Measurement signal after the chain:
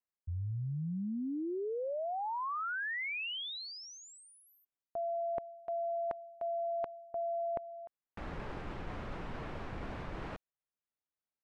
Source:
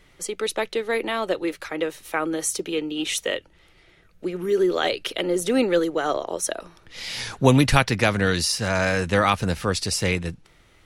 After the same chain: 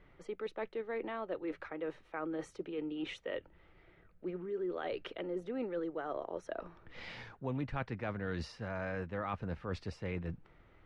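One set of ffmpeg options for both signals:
ffmpeg -i in.wav -af "lowpass=1700,areverse,acompressor=threshold=-32dB:ratio=4,areverse,volume=-5dB" out.wav

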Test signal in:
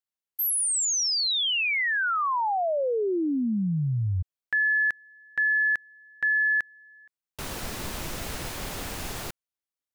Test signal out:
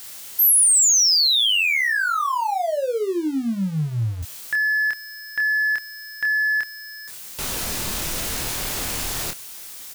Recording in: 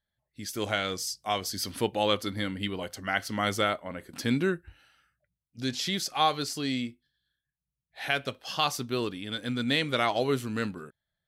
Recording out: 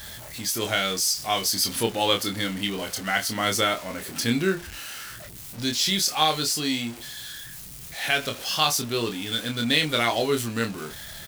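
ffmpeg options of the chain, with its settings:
ffmpeg -i in.wav -filter_complex "[0:a]aeval=exprs='val(0)+0.5*0.0133*sgn(val(0))':channel_layout=same,highshelf=frequency=3000:gain=9,asplit=2[link_01][link_02];[link_02]adelay=26,volume=-5dB[link_03];[link_01][link_03]amix=inputs=2:normalize=0" out.wav

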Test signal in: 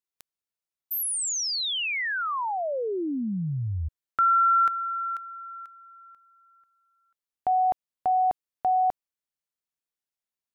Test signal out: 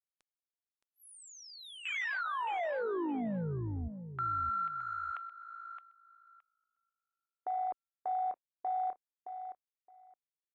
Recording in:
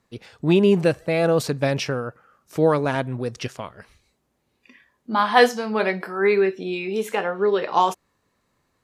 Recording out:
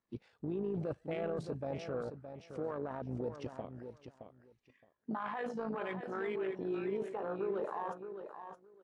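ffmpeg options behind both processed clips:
ffmpeg -i in.wav -filter_complex "[0:a]aemphasis=mode=reproduction:type=cd,afwtdn=0.0447,equalizer=frequency=90:width_type=o:width=2.4:gain=-7,areverse,acompressor=threshold=-28dB:ratio=16:attack=1.8:release=36:knee=6:detection=peak,areverse,alimiter=level_in=4.5dB:limit=-24dB:level=0:latency=1:release=220,volume=-4.5dB,tremolo=f=54:d=0.462,asplit=2[link_01][link_02];[link_02]aecho=0:1:618|1236:0.355|0.0568[link_03];[link_01][link_03]amix=inputs=2:normalize=0" -ar 24000 -c:a aac -b:a 96k out.aac

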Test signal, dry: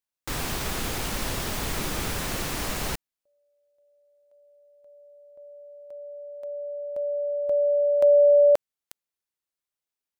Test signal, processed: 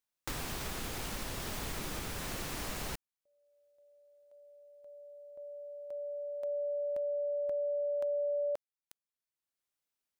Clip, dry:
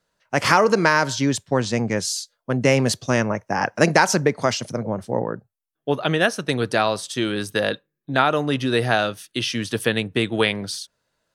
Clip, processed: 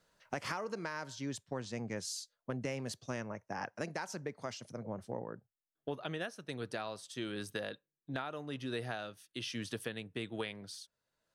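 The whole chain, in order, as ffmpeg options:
ffmpeg -i in.wav -af "acompressor=threshold=-32dB:ratio=8:attack=3.3:release=997:knee=1:detection=rms" out.wav

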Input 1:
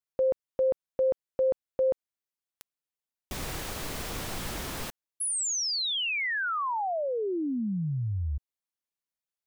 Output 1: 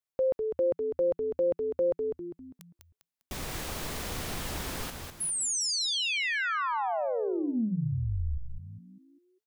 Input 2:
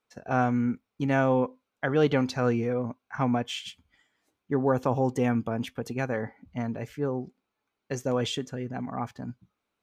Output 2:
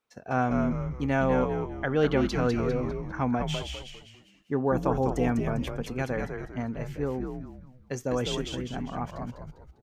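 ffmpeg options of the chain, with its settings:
ffmpeg -i in.wav -filter_complex "[0:a]asplit=6[link_01][link_02][link_03][link_04][link_05][link_06];[link_02]adelay=200,afreqshift=-88,volume=-5dB[link_07];[link_03]adelay=400,afreqshift=-176,volume=-13dB[link_08];[link_04]adelay=600,afreqshift=-264,volume=-20.9dB[link_09];[link_05]adelay=800,afreqshift=-352,volume=-28.9dB[link_10];[link_06]adelay=1000,afreqshift=-440,volume=-36.8dB[link_11];[link_01][link_07][link_08][link_09][link_10][link_11]amix=inputs=6:normalize=0,volume=-1.5dB" out.wav

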